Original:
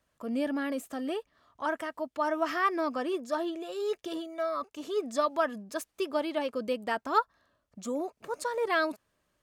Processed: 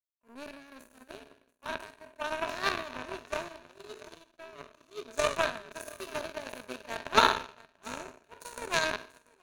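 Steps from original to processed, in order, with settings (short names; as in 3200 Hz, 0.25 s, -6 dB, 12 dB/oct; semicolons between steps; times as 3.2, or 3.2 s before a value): spectral trails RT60 1.36 s; high shelf 7100 Hz +4 dB; feedback echo 0.688 s, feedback 33%, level -8.5 dB; power-law curve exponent 3; ripple EQ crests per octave 1.5, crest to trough 7 dB; gain +7.5 dB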